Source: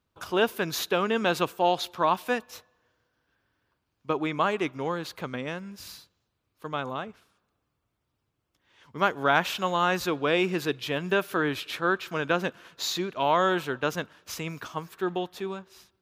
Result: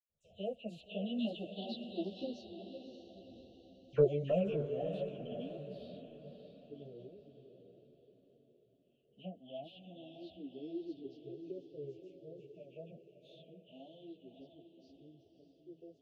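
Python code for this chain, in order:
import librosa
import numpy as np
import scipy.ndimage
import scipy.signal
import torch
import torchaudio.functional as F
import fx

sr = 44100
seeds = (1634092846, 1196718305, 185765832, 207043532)

p1 = fx.spec_ripple(x, sr, per_octave=0.53, drift_hz=0.26, depth_db=18)
p2 = fx.doppler_pass(p1, sr, speed_mps=24, closest_m=3.1, pass_at_s=3.27)
p3 = scipy.signal.sosfilt(scipy.signal.cheby1(5, 1.0, [680.0, 2700.0], 'bandstop', fs=sr, output='sos'), p2)
p4 = np.clip(10.0 ** (36.0 / 20.0) * p3, -1.0, 1.0) / 10.0 ** (36.0 / 20.0)
p5 = p3 + (p4 * librosa.db_to_amplitude(-5.0))
p6 = fx.spacing_loss(p5, sr, db_at_10k=32)
p7 = fx.dispersion(p6, sr, late='lows', ms=94.0, hz=2400.0)
p8 = p7 + fx.echo_diffused(p7, sr, ms=587, feedback_pct=47, wet_db=-8.0, dry=0)
p9 = fx.ensemble(p8, sr)
y = p9 * librosa.db_to_amplitude(12.0)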